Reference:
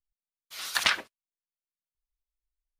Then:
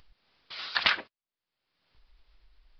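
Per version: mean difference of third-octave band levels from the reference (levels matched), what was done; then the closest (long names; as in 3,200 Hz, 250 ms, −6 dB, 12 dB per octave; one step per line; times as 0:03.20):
7.0 dB: upward compression, threshold −36 dBFS
downsampling to 11,025 Hz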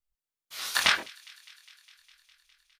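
2.0 dB: double-tracking delay 24 ms −3 dB
on a send: delay with a high-pass on its return 204 ms, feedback 76%, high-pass 2,200 Hz, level −22.5 dB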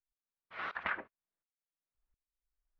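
13.5 dB: low-pass filter 1,900 Hz 24 dB per octave
tremolo with a ramp in dB swelling 1.4 Hz, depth 20 dB
level +8.5 dB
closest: second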